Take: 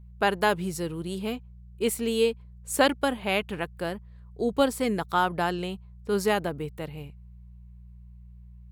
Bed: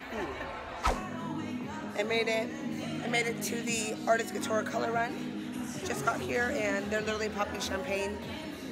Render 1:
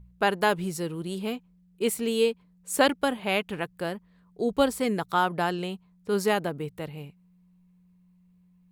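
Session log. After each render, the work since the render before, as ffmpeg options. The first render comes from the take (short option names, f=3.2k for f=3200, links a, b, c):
-af "bandreject=f=60:t=h:w=4,bandreject=f=120:t=h:w=4"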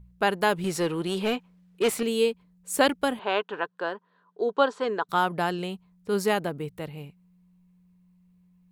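-filter_complex "[0:a]asettb=1/sr,asplit=3[a][b][c];[a]atrim=end=0.644[d];[b]atrim=start=0.64:end=2.03,asetpts=PTS-STARTPTS,afade=t=in:d=0.004:c=qsin,afade=t=out:st=1.386:d=0.004:c=qsin,asplit=2[e][f];[f]highpass=f=720:p=1,volume=19dB,asoftclip=type=tanh:threshold=-14dB[g];[e][g]amix=inputs=2:normalize=0,lowpass=f=2.8k:p=1,volume=-6dB[h];[c]atrim=start=2.026[i];[d][h]acrossfade=d=0.004:c1=hsin:c2=qsin[j];[j][i]acrossfade=d=0.004:c1=qsin:c2=hsin,asettb=1/sr,asplit=3[k][l][m];[k]atrim=end=3.194[n];[l]atrim=start=3.19:end=5.09,asetpts=PTS-STARTPTS,afade=t=in:d=0.004:c=qsin,afade=t=out:st=1.896:d=0.004:c=qsin,highpass=390,equalizer=f=420:t=q:w=4:g=6,equalizer=f=1k:t=q:w=4:g=9,equalizer=f=1.5k:t=q:w=4:g=8,equalizer=f=2.2k:t=q:w=4:g=-9,equalizer=f=5k:t=q:w=4:g=-7,lowpass=f=5.4k:w=0.5412,lowpass=f=5.4k:w=1.3066[o];[m]atrim=start=5.086[p];[n][o]acrossfade=d=0.004:c1=hsin:c2=qsin[q];[q][p]acrossfade=d=0.004:c1=qsin:c2=hsin"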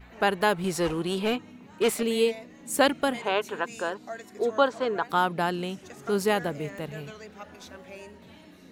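-filter_complex "[1:a]volume=-11.5dB[a];[0:a][a]amix=inputs=2:normalize=0"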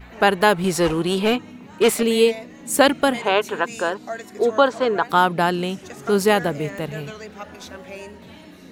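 -af "volume=7.5dB,alimiter=limit=-3dB:level=0:latency=1"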